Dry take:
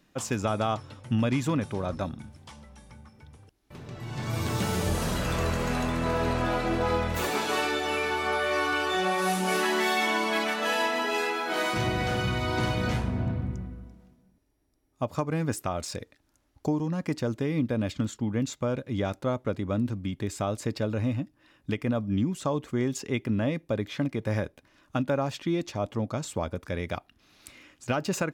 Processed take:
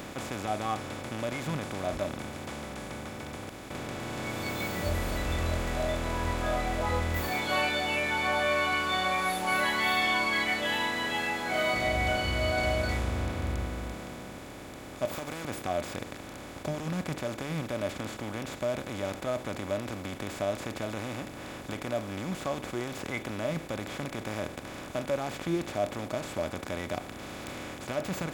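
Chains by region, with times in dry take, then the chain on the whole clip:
0:15.05–0:15.45: spectral tilt +4.5 dB per octave + downward compressor, threshold −36 dBFS + leveller curve on the samples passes 1
whole clip: compressor on every frequency bin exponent 0.2; noise reduction from a noise print of the clip's start 17 dB

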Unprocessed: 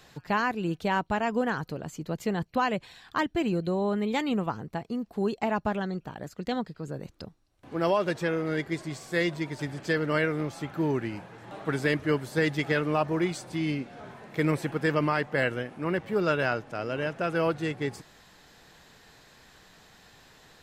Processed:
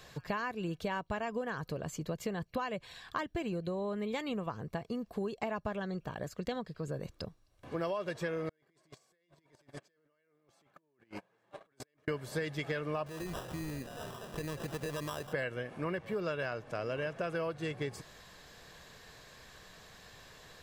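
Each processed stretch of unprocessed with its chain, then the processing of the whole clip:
0:08.49–0:12.08: high-pass filter 200 Hz + compressor whose output falls as the input rises −39 dBFS + noise gate −32 dBFS, range −33 dB
0:13.06–0:15.33: sample-rate reduction 2,200 Hz + downward compressor, threshold −34 dBFS
whole clip: comb filter 1.8 ms, depth 34%; downward compressor, threshold −33 dBFS

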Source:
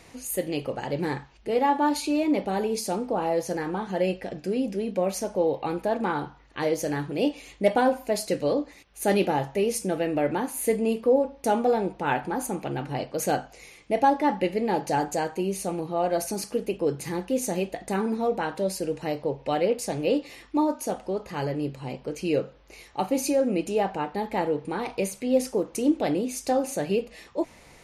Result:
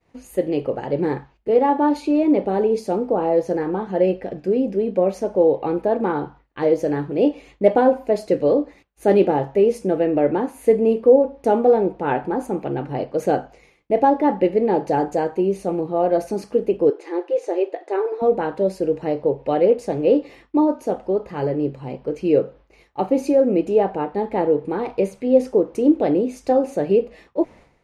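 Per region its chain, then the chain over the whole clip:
0:16.90–0:18.22: linear-phase brick-wall high-pass 300 Hz + high-frequency loss of the air 72 metres
whole clip: dynamic equaliser 420 Hz, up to +7 dB, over −37 dBFS, Q 1.2; downward expander −42 dBFS; low-pass filter 1,400 Hz 6 dB per octave; level +3 dB

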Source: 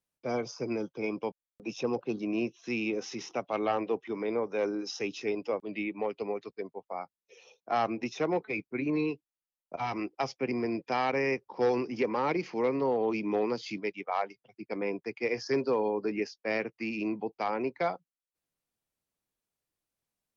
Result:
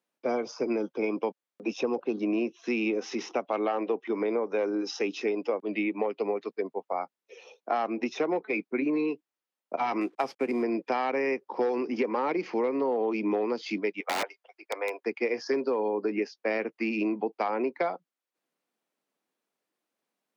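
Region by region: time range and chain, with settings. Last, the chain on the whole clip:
0:10.01–0:10.63: variable-slope delta modulation 64 kbit/s + high-shelf EQ 6,000 Hz −7 dB
0:14.00–0:15.02: high-pass filter 570 Hz 24 dB per octave + wrap-around overflow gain 27.5 dB
whole clip: high-pass filter 220 Hz 24 dB per octave; high-shelf EQ 4,100 Hz −11.5 dB; downward compressor, threshold −33 dBFS; level +8.5 dB

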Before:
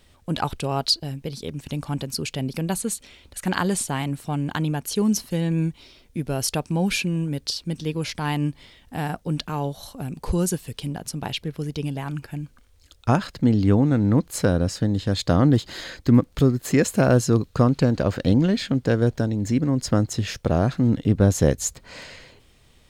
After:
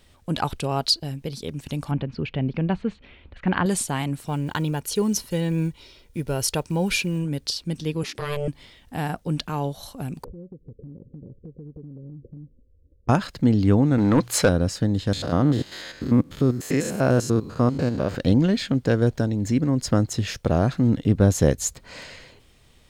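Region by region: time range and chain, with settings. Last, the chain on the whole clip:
0:01.91–0:03.66: low-pass filter 2,900 Hz 24 dB per octave + low-shelf EQ 190 Hz +5 dB
0:04.26–0:07.25: one scale factor per block 7 bits + comb filter 2.1 ms, depth 33%
0:08.03–0:08.48: notch filter 1,000 Hz, Q 6.6 + ring modulation 290 Hz
0:10.24–0:13.09: Chebyshev low-pass filter 560 Hz, order 10 + downward compressor 16 to 1, threshold −36 dBFS
0:13.98–0:14.49: mains-hum notches 60/120 Hz + mid-hump overdrive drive 17 dB, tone 6,100 Hz, clips at −7 dBFS
0:15.13–0:18.15: spectrum averaged block by block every 100 ms + low-shelf EQ 67 Hz −10 dB
whole clip: no processing

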